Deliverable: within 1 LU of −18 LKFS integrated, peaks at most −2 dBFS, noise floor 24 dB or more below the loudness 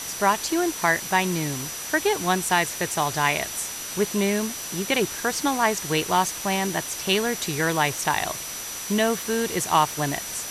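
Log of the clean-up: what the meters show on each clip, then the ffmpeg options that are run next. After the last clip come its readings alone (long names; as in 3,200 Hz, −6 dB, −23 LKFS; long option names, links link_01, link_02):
interfering tone 5,900 Hz; level of the tone −36 dBFS; background noise floor −34 dBFS; target noise floor −48 dBFS; integrated loudness −24.0 LKFS; sample peak −6.5 dBFS; target loudness −18.0 LKFS
→ -af "bandreject=frequency=5900:width=30"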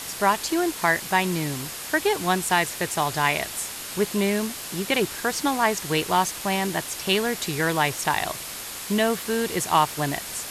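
interfering tone none found; background noise floor −35 dBFS; target noise floor −48 dBFS
→ -af "afftdn=noise_reduction=13:noise_floor=-35"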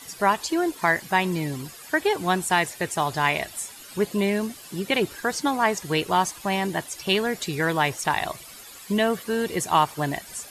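background noise floor −44 dBFS; target noise floor −49 dBFS
→ -af "afftdn=noise_reduction=6:noise_floor=-44"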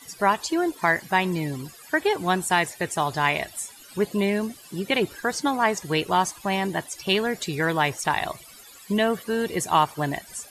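background noise floor −47 dBFS; target noise floor −49 dBFS
→ -af "afftdn=noise_reduction=6:noise_floor=-47"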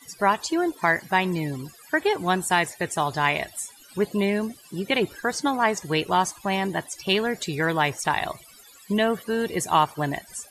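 background noise floor −50 dBFS; integrated loudness −25.0 LKFS; sample peak −7.0 dBFS; target loudness −18.0 LKFS
→ -af "volume=7dB,alimiter=limit=-2dB:level=0:latency=1"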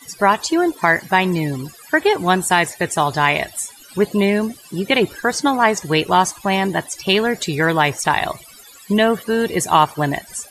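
integrated loudness −18.0 LKFS; sample peak −2.0 dBFS; background noise floor −43 dBFS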